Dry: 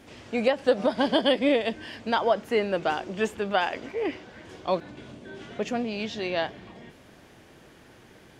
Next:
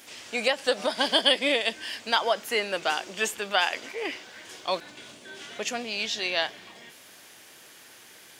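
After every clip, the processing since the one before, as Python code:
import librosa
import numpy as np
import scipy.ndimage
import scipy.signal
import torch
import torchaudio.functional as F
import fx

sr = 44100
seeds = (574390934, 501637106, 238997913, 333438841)

y = fx.tilt_eq(x, sr, slope=4.5)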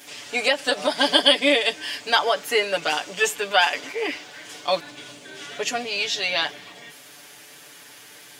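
y = x + 0.96 * np.pad(x, (int(6.9 * sr / 1000.0), 0))[:len(x)]
y = y * librosa.db_to_amplitude(2.0)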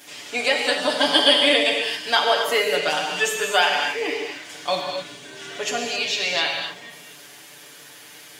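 y = fx.rev_gated(x, sr, seeds[0], gate_ms=290, shape='flat', drr_db=1.0)
y = y * librosa.db_to_amplitude(-1.0)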